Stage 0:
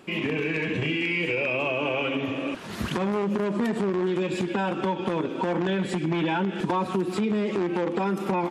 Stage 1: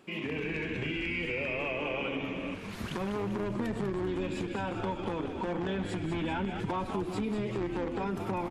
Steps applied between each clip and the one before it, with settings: frequency-shifting echo 0.196 s, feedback 54%, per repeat -87 Hz, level -7.5 dB; gain -8 dB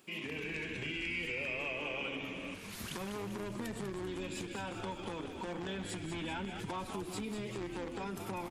pre-emphasis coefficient 0.8; gain +6 dB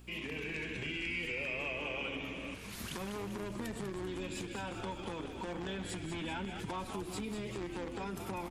hum 60 Hz, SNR 15 dB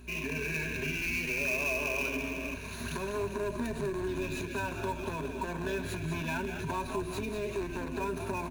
self-modulated delay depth 0.077 ms; ripple EQ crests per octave 1.5, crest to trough 14 dB; in parallel at -5.5 dB: sample-rate reducer 8600 Hz, jitter 20%

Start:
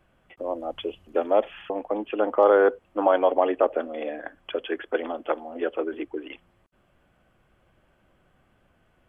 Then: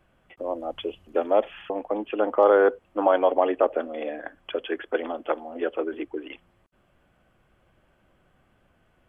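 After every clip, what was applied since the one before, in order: nothing audible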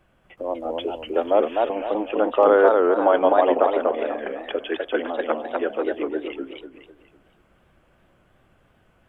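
warbling echo 0.249 s, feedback 36%, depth 181 cents, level -3 dB; gain +2 dB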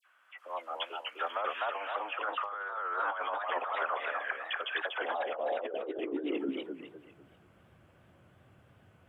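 high-pass sweep 1300 Hz -> 97 Hz, 4.58–7.29; dispersion lows, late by 58 ms, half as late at 2100 Hz; negative-ratio compressor -27 dBFS, ratio -1; gain -7 dB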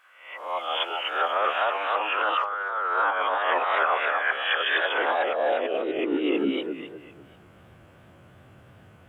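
spectral swells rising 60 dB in 0.59 s; gain +7.5 dB

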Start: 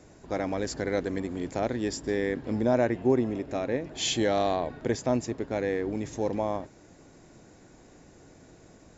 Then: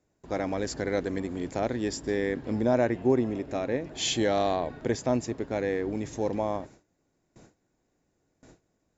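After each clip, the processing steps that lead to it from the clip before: gate with hold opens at -42 dBFS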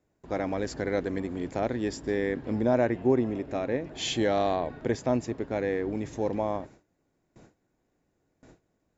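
tone controls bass 0 dB, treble -6 dB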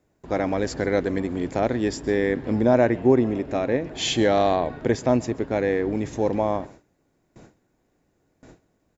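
echo 0.132 s -23.5 dB; gain +6 dB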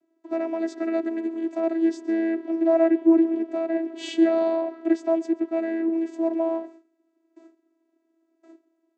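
vocoder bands 16, saw 328 Hz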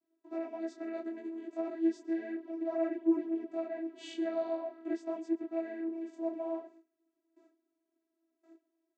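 detuned doubles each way 20 cents; gain -8 dB

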